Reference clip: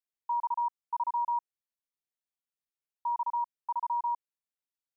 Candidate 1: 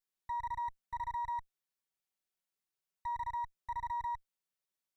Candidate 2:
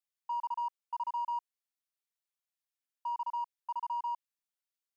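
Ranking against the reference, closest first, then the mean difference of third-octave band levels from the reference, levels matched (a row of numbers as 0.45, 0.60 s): 2, 1; 2.5, 6.5 dB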